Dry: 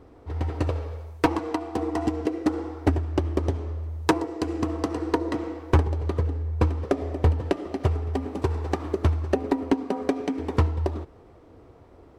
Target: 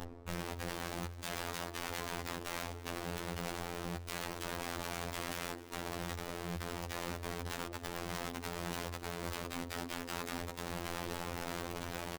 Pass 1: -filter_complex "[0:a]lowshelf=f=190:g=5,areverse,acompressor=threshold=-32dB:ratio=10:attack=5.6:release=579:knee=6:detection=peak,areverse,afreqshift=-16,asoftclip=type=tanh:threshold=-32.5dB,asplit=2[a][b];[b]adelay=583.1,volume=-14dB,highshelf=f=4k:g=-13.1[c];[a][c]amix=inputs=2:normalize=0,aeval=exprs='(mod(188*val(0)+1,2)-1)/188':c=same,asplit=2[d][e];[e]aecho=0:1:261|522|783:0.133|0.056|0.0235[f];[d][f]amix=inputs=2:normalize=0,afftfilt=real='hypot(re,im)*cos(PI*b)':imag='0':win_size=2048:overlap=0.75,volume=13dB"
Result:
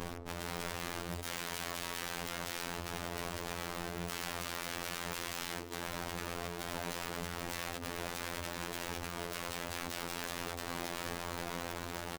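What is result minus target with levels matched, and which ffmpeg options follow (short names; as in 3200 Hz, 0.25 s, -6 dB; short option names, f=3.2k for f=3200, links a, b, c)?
compressor: peak gain reduction -7 dB
-filter_complex "[0:a]lowshelf=f=190:g=5,areverse,acompressor=threshold=-40dB:ratio=10:attack=5.6:release=579:knee=6:detection=peak,areverse,afreqshift=-16,asoftclip=type=tanh:threshold=-32.5dB,asplit=2[a][b];[b]adelay=583.1,volume=-14dB,highshelf=f=4k:g=-13.1[c];[a][c]amix=inputs=2:normalize=0,aeval=exprs='(mod(188*val(0)+1,2)-1)/188':c=same,asplit=2[d][e];[e]aecho=0:1:261|522|783:0.133|0.056|0.0235[f];[d][f]amix=inputs=2:normalize=0,afftfilt=real='hypot(re,im)*cos(PI*b)':imag='0':win_size=2048:overlap=0.75,volume=13dB"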